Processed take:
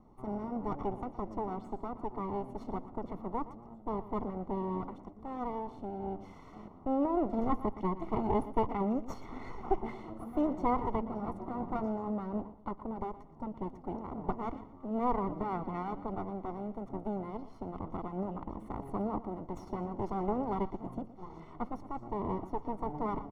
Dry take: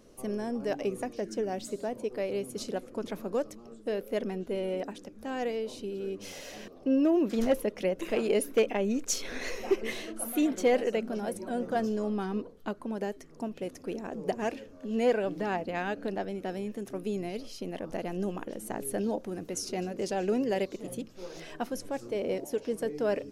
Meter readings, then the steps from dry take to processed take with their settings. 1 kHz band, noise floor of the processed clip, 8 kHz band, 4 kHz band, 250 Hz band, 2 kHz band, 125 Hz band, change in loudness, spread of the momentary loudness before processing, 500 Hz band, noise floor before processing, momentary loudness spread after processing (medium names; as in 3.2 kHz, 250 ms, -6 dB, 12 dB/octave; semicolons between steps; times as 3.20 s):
+3.0 dB, -52 dBFS, under -25 dB, under -20 dB, -3.5 dB, -14.5 dB, +1.0 dB, -4.5 dB, 11 LU, -8.0 dB, -51 dBFS, 11 LU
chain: comb filter that takes the minimum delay 0.9 ms; Savitzky-Golay filter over 65 samples; feedback delay 118 ms, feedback 29%, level -15.5 dB